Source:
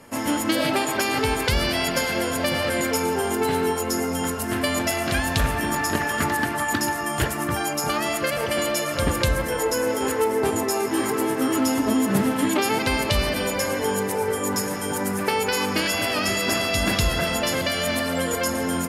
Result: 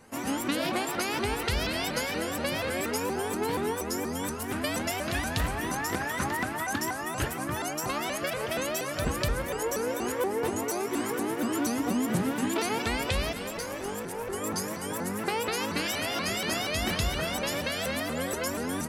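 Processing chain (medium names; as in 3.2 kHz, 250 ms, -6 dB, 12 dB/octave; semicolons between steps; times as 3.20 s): 13.32–14.33 s: valve stage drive 18 dB, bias 0.7; vibrato with a chosen wave saw up 4.2 Hz, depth 250 cents; trim -7 dB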